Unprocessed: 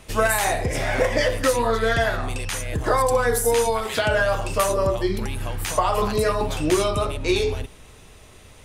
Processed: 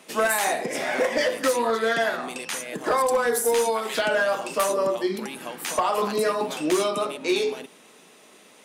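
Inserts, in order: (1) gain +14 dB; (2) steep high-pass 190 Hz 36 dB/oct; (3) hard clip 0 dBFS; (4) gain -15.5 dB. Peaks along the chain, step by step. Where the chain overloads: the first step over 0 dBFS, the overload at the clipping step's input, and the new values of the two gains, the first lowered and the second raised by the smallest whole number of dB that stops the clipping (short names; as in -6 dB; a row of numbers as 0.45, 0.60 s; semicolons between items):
+7.5, +6.5, 0.0, -15.5 dBFS; step 1, 6.5 dB; step 1 +7 dB, step 4 -8.5 dB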